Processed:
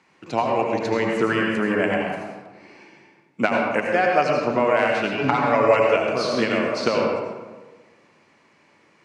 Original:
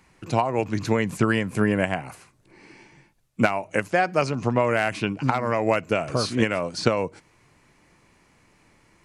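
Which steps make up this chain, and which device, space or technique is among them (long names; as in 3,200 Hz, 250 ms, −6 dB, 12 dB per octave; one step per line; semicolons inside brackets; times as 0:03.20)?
supermarket ceiling speaker (band-pass filter 230–5,400 Hz; convolution reverb RT60 1.3 s, pre-delay 74 ms, DRR −0.5 dB)
0:05.17–0:05.96: comb filter 7.1 ms, depth 90%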